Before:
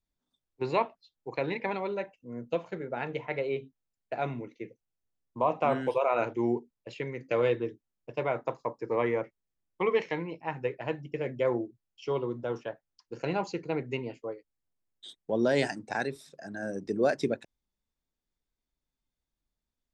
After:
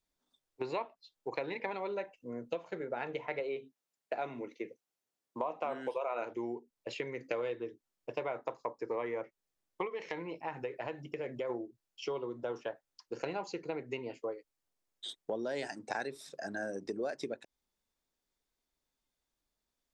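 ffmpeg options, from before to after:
ffmpeg -i in.wav -filter_complex "[0:a]asettb=1/sr,asplit=3[link_01][link_02][link_03];[link_01]atrim=end=3.404[link_04];[link_02]atrim=start=3.4:end=6.31,asetpts=PTS-STARTPTS,afade=type=in:duration=0.004:curve=qsin,afade=type=out:start_time=2.906:duration=0.004:curve=qsin,highpass=160[link_05];[link_03]atrim=start=6.306[link_06];[link_04][link_05]acrossfade=duration=0.004:curve1=hsin:curve2=qsin[link_07];[link_07][link_06]acrossfade=duration=0.004:curve1=qsin:curve2=hsin,asplit=3[link_08][link_09][link_10];[link_08]afade=type=out:start_time=9.86:duration=0.02[link_11];[link_09]acompressor=threshold=-39dB:ratio=2:attack=3.2:release=140:knee=1:detection=peak,afade=type=in:start_time=9.86:duration=0.02,afade=type=out:start_time=11.49:duration=0.02[link_12];[link_10]afade=type=in:start_time=11.49:duration=0.02[link_13];[link_11][link_12][link_13]amix=inputs=3:normalize=0,highshelf=frequency=4500:gain=-11.5,acompressor=threshold=-38dB:ratio=6,bass=frequency=250:gain=-10,treble=frequency=4000:gain=9,volume=5dB" out.wav

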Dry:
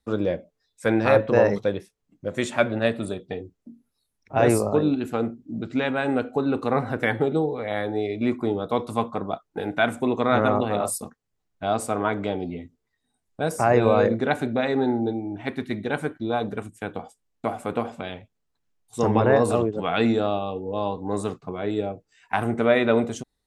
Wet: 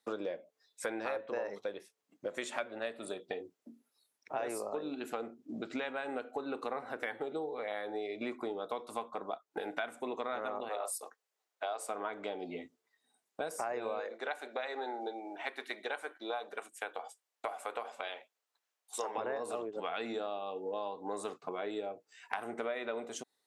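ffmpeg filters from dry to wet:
ffmpeg -i in.wav -filter_complex "[0:a]asettb=1/sr,asplit=3[link_01][link_02][link_03];[link_01]atrim=end=10.694[link_04];[link_02]atrim=start=10.69:end=11.89,asetpts=PTS-STARTPTS,afade=type=in:duration=0.004:curve=qsin,afade=type=out:start_time=1.196:duration=0.004:curve=qsin,highpass=frequency=390:width=0.5412,highpass=frequency=390:width=1.3066[link_05];[link_03]atrim=start=11.886[link_06];[link_04][link_05]acrossfade=duration=0.004:curve1=hsin:curve2=qsin[link_07];[link_07][link_06]acrossfade=duration=0.004:curve1=qsin:curve2=hsin,asettb=1/sr,asplit=3[link_08][link_09][link_10];[link_08]atrim=end=14.004[link_11];[link_09]atrim=start=14:end=19.18,asetpts=PTS-STARTPTS,afade=type=in:duration=0.004:curve=qsin,afade=type=out:start_time=5.176:duration=0.004:curve=qsin,highpass=540[link_12];[link_10]atrim=start=19.176[link_13];[link_11][link_12]acrossfade=duration=0.004:curve1=hsin:curve2=qsin[link_14];[link_14][link_13]acrossfade=duration=0.004:curve1=qsin:curve2=hsin,highpass=440,acompressor=threshold=-37dB:ratio=6,volume=1.5dB" out.wav

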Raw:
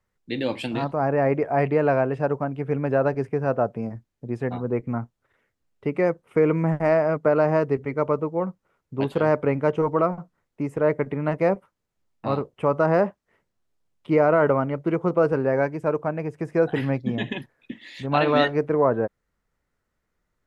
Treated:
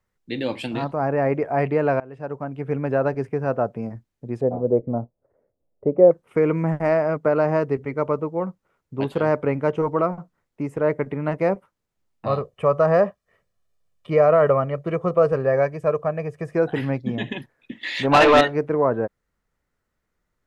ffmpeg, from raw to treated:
ffmpeg -i in.wav -filter_complex "[0:a]asettb=1/sr,asplit=3[link_01][link_02][link_03];[link_01]atrim=end=4.414[link_04];[link_02]atrim=start=4.41:end=6.11,asetpts=PTS-STARTPTS,afade=type=in:duration=0.004:curve=qsin,afade=type=out:start_time=1.696:duration=0.004:curve=qsin,lowpass=frequency=580:width_type=q:width=3.6[link_05];[link_03]atrim=start=6.106[link_06];[link_04][link_05]acrossfade=duration=0.004:curve1=hsin:curve2=qsin[link_07];[link_07][link_06]acrossfade=duration=0.004:curve1=qsin:curve2=hsin,asettb=1/sr,asplit=3[link_08][link_09][link_10];[link_08]atrim=end=12.264[link_11];[link_09]atrim=start=12.26:end=16.55,asetpts=PTS-STARTPTS,afade=type=in:duration=0.004:curve=qsin,afade=type=out:start_time=4.286:duration=0.004:curve=qsin,aecho=1:1:1.7:0.62,atrim=end_sample=189189[link_12];[link_10]atrim=start=16.546[link_13];[link_11][link_12]acrossfade=duration=0.004:curve1=hsin:curve2=qsin[link_14];[link_14][link_13]acrossfade=duration=0.004:curve1=qsin:curve2=hsin,asettb=1/sr,asplit=3[link_15][link_16][link_17];[link_15]atrim=end=17.834[link_18];[link_16]atrim=start=17.83:end=18.41,asetpts=PTS-STARTPTS,afade=type=in:duration=0.004:curve=qsin,afade=type=out:start_time=0.576:duration=0.004:curve=qsin,asplit=2[link_19][link_20];[link_20]highpass=frequency=720:poles=1,volume=23dB,asoftclip=type=tanh:threshold=-4.5dB[link_21];[link_19][link_21]amix=inputs=2:normalize=0,lowpass=frequency=2700:poles=1,volume=-6dB[link_22];[link_17]atrim=start=18.406[link_23];[link_18][link_22]acrossfade=duration=0.004:curve1=hsin:curve2=qsin[link_24];[link_24][link_23]acrossfade=duration=0.004:curve1=qsin:curve2=hsin,asplit=2[link_25][link_26];[link_25]atrim=end=2,asetpts=PTS-STARTPTS,afade=type=out:start_time=1.996:duration=0.004:curve=hsin:silence=0.0668344[link_27];[link_26]atrim=start=2,asetpts=PTS-STARTPTS,afade=type=in:duration=0.69:silence=0.0668344[link_28];[link_27][link_28]concat=n=2:v=0:a=1" out.wav

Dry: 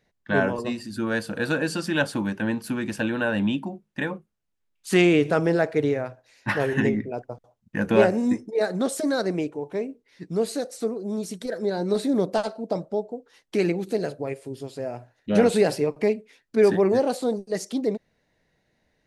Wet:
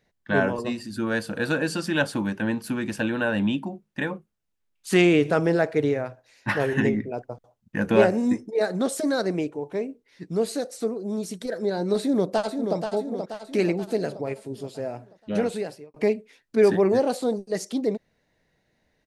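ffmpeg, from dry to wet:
ffmpeg -i in.wav -filter_complex "[0:a]asplit=2[link_01][link_02];[link_02]afade=type=in:start_time=12:duration=0.01,afade=type=out:start_time=12.77:duration=0.01,aecho=0:1:480|960|1440|1920|2400|2880|3360:0.473151|0.260233|0.143128|0.0787205|0.0432963|0.023813|0.0130971[link_03];[link_01][link_03]amix=inputs=2:normalize=0,asplit=2[link_04][link_05];[link_04]atrim=end=15.94,asetpts=PTS-STARTPTS,afade=type=out:start_time=14.86:duration=1.08[link_06];[link_05]atrim=start=15.94,asetpts=PTS-STARTPTS,afade=type=in:duration=0.004:curve=hsin[link_07];[link_06][link_07]concat=n=2:v=0:a=1" out.wav

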